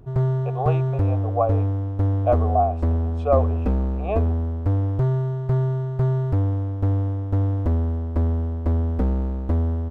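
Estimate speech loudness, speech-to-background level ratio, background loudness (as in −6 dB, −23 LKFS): −26.0 LKFS, −2.5 dB, −23.5 LKFS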